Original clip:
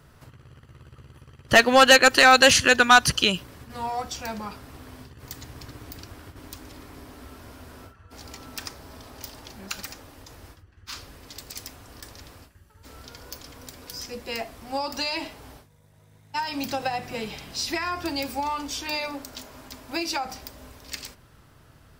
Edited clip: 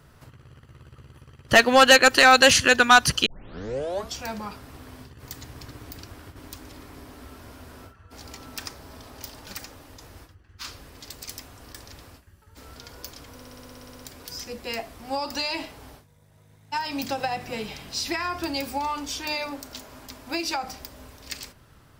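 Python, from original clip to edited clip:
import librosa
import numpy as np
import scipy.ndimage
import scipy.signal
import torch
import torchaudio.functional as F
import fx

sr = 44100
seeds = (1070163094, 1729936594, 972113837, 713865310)

y = fx.edit(x, sr, fx.tape_start(start_s=3.26, length_s=0.89),
    fx.cut(start_s=9.47, length_s=0.28),
    fx.stutter(start_s=13.62, slice_s=0.06, count=12), tone=tone)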